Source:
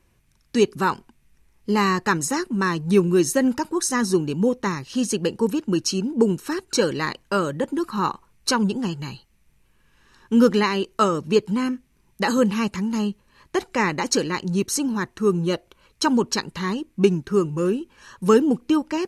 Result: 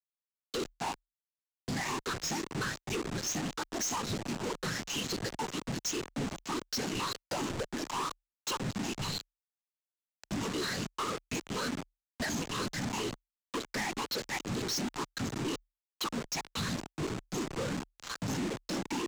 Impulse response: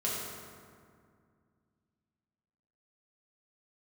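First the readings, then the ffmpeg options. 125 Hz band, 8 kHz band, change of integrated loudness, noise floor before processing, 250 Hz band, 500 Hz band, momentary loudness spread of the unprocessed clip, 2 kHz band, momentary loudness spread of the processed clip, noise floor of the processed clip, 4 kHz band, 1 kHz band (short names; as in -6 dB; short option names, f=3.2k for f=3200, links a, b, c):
-11.0 dB, -7.5 dB, -13.0 dB, -62 dBFS, -16.0 dB, -17.5 dB, 9 LU, -10.0 dB, 5 LU, under -85 dBFS, -6.0 dB, -11.5 dB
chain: -af "afftfilt=real='re*pow(10,22/40*sin(2*PI*(0.66*log(max(b,1)*sr/1024/100)/log(2)-(2)*(pts-256)/sr)))':imag='im*pow(10,22/40*sin(2*PI*(0.66*log(max(b,1)*sr/1024/100)/log(2)-(2)*(pts-256)/sr)))':win_size=1024:overlap=0.75,bandreject=f=50:t=h:w=6,bandreject=f=100:t=h:w=6,bandreject=f=150:t=h:w=6,bandreject=f=200:t=h:w=6,bandreject=f=250:t=h:w=6,bandreject=f=300:t=h:w=6,bandreject=f=350:t=h:w=6,bandreject=f=400:t=h:w=6,bandreject=f=450:t=h:w=6,afftfilt=real='hypot(re,im)*cos(2*PI*random(0))':imag='hypot(re,im)*sin(2*PI*random(1))':win_size=512:overlap=0.75,lowpass=6.3k,equalizer=f=81:w=1.5:g=-13,acompressor=threshold=-36dB:ratio=8,bass=f=250:g=-1,treble=f=4k:g=7,aresample=16000,acrusher=bits=6:mix=0:aa=0.000001,aresample=44100,asoftclip=type=hard:threshold=-38.5dB,afreqshift=-38,volume=7.5dB"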